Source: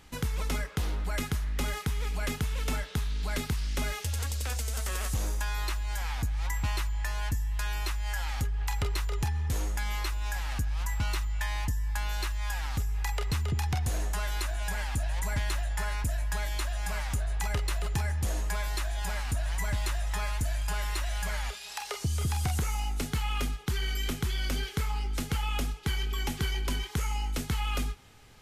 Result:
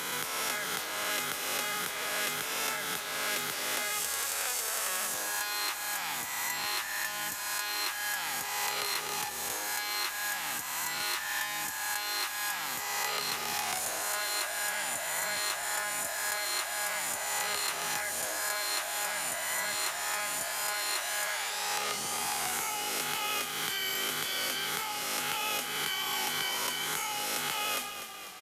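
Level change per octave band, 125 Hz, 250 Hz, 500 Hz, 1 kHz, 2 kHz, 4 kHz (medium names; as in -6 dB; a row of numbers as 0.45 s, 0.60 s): -25.0 dB, -8.5 dB, +1.0 dB, +4.0 dB, +5.5 dB, +6.0 dB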